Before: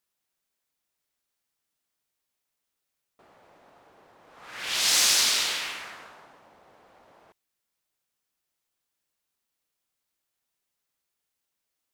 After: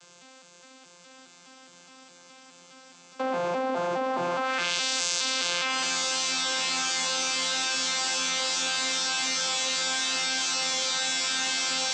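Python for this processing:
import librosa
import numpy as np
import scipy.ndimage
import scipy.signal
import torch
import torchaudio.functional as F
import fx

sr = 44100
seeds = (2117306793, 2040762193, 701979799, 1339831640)

p1 = fx.vocoder_arp(x, sr, chord='bare fifth', root=53, every_ms=208)
p2 = fx.tilt_eq(p1, sr, slope=2.5)
p3 = fx.notch(p2, sr, hz=1900.0, q=8.0)
p4 = fx.comb_fb(p3, sr, f0_hz=130.0, decay_s=0.16, harmonics='all', damping=0.0, mix_pct=70)
p5 = p4 + fx.echo_diffused(p4, sr, ms=1069, feedback_pct=55, wet_db=-8.5, dry=0)
p6 = fx.env_flatten(p5, sr, amount_pct=100)
y = p6 * 10.0 ** (-4.5 / 20.0)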